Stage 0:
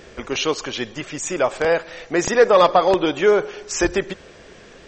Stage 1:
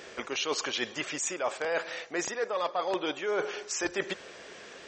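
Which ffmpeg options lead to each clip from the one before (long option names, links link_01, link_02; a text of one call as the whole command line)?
ffmpeg -i in.wav -af "highpass=frequency=580:poles=1,areverse,acompressor=threshold=-27dB:ratio=12,areverse" out.wav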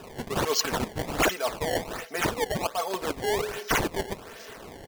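ffmpeg -i in.wav -af "equalizer=frequency=6200:width=2.1:gain=11,aecho=1:1:4.5:0.73,acrusher=samples=20:mix=1:aa=0.000001:lfo=1:lforange=32:lforate=1.3" out.wav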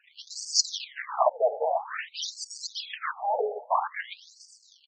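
ffmpeg -i in.wav -filter_complex "[0:a]acrossover=split=7800[link_01][link_02];[link_02]acompressor=threshold=-44dB:ratio=4:attack=1:release=60[link_03];[link_01][link_03]amix=inputs=2:normalize=0,agate=range=-16dB:threshold=-42dB:ratio=16:detection=peak,afftfilt=real='re*between(b*sr/1024,580*pow(6400/580,0.5+0.5*sin(2*PI*0.5*pts/sr))/1.41,580*pow(6400/580,0.5+0.5*sin(2*PI*0.5*pts/sr))*1.41)':imag='im*between(b*sr/1024,580*pow(6400/580,0.5+0.5*sin(2*PI*0.5*pts/sr))/1.41,580*pow(6400/580,0.5+0.5*sin(2*PI*0.5*pts/sr))*1.41)':win_size=1024:overlap=0.75,volume=6.5dB" out.wav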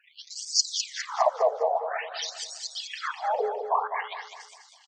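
ffmpeg -i in.wav -af "aecho=1:1:204|408|612|816|1020:0.422|0.169|0.0675|0.027|0.0108" out.wav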